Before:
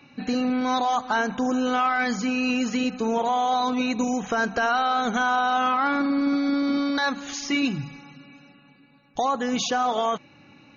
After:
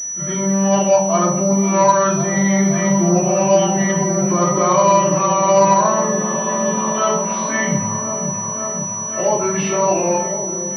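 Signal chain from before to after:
phase-vocoder pitch shift without resampling −4.5 semitones
high-pass filter 140 Hz 12 dB per octave
echo whose low-pass opens from repeat to repeat 534 ms, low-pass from 400 Hz, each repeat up 1 octave, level −6 dB
rectangular room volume 760 cubic metres, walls furnished, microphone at 3 metres
switching amplifier with a slow clock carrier 5,900 Hz
level +4 dB

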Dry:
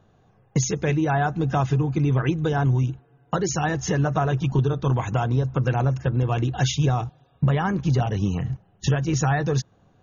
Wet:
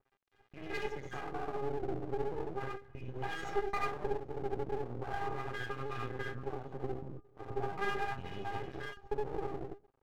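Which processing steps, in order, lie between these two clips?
slices reordered back to front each 134 ms, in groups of 4
dynamic equaliser 290 Hz, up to +3 dB, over −35 dBFS, Q 0.7
in parallel at −1 dB: brickwall limiter −19 dBFS, peak gain reduction 10.5 dB
on the sum: downward compressor 6 to 1, threshold −22 dBFS, peak gain reduction 10 dB
auto-filter low-pass sine 0.39 Hz 350–2,400 Hz
stiff-string resonator 400 Hz, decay 0.21 s, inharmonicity 0.002
reverb whose tail is shaped and stops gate 110 ms rising, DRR −1 dB
half-wave rectification
level +4 dB

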